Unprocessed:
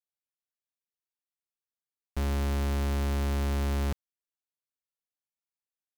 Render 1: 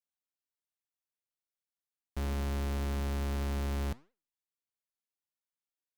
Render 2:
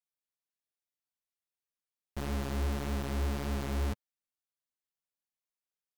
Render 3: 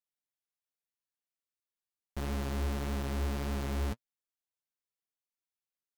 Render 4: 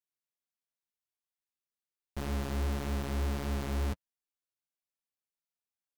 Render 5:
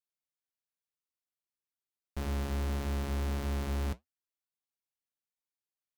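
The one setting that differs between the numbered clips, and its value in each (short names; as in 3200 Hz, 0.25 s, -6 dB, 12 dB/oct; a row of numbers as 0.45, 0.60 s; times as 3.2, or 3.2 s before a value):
flange, regen: +89, +5, +29, -16, -67%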